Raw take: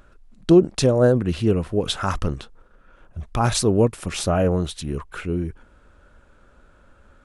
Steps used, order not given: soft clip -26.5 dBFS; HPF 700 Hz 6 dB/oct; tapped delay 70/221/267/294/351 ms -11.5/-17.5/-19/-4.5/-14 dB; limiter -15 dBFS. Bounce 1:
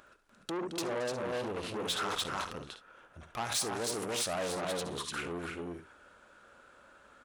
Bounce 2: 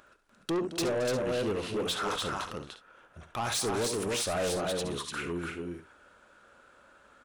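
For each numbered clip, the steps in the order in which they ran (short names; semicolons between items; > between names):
tapped delay > limiter > soft clip > HPF; HPF > limiter > tapped delay > soft clip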